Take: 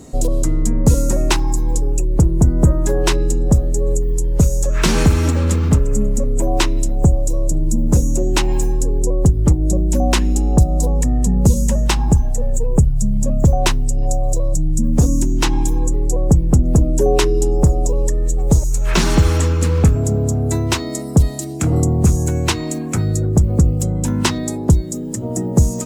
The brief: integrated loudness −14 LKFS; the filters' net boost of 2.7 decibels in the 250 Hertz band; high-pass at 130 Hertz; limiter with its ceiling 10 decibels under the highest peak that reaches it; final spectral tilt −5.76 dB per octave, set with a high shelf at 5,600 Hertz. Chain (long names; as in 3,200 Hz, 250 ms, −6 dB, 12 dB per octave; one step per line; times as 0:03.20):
high-pass filter 130 Hz
parametric band 250 Hz +4.5 dB
high-shelf EQ 5,600 Hz −3 dB
level +7 dB
brickwall limiter −2.5 dBFS